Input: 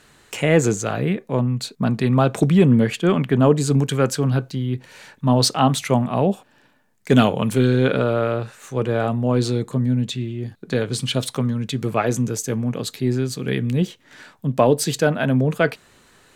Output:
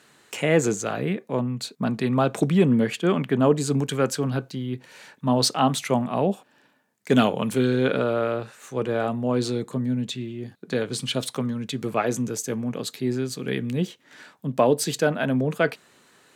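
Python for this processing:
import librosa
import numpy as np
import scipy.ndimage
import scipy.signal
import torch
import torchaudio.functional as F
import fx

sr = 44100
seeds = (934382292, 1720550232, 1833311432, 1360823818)

y = scipy.signal.sosfilt(scipy.signal.butter(2, 160.0, 'highpass', fs=sr, output='sos'), x)
y = y * 10.0 ** (-3.0 / 20.0)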